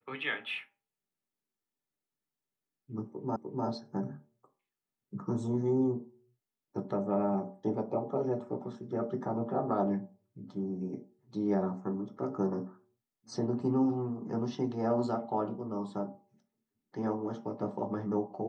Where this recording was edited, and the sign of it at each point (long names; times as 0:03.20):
0:03.36: the same again, the last 0.3 s